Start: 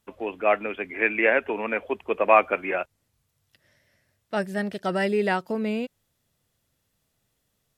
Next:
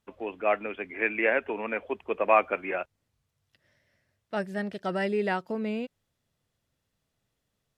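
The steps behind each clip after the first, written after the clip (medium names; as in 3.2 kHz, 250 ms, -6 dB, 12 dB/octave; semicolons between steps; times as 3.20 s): treble shelf 8.4 kHz -11 dB; trim -4 dB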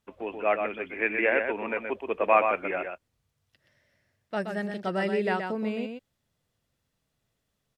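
delay 124 ms -6 dB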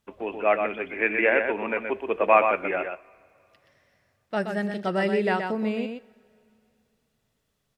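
two-slope reverb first 0.4 s, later 2.8 s, from -16 dB, DRR 16.5 dB; trim +3 dB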